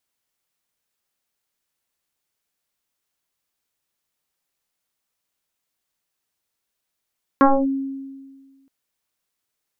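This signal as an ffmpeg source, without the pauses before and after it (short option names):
-f lavfi -i "aevalsrc='0.376*pow(10,-3*t/1.62)*sin(2*PI*271*t+4.1*clip(1-t/0.25,0,1)*sin(2*PI*1.01*271*t))':d=1.27:s=44100"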